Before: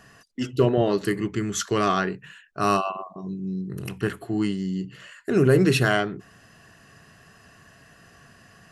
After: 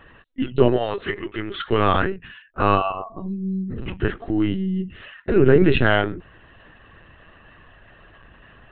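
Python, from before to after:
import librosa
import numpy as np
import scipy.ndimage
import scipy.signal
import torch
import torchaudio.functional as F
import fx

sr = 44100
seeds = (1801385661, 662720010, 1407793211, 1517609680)

y = fx.highpass(x, sr, hz=fx.line((0.76, 800.0), (1.69, 270.0)), slope=12, at=(0.76, 1.69), fade=0.02)
y = fx.lpc_vocoder(y, sr, seeds[0], excitation='pitch_kept', order=16)
y = F.gain(torch.from_numpy(y), 4.0).numpy()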